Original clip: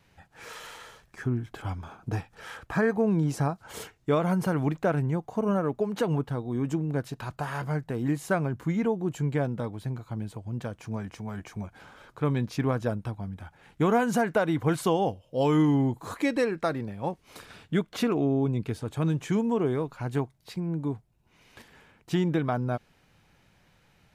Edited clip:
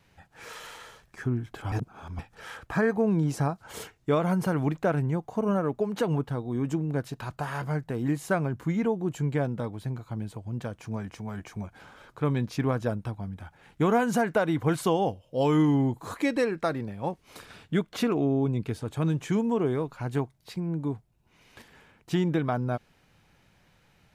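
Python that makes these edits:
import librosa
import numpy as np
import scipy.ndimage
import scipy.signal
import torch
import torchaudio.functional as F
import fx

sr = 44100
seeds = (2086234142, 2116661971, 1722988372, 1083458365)

y = fx.edit(x, sr, fx.reverse_span(start_s=1.72, length_s=0.47), tone=tone)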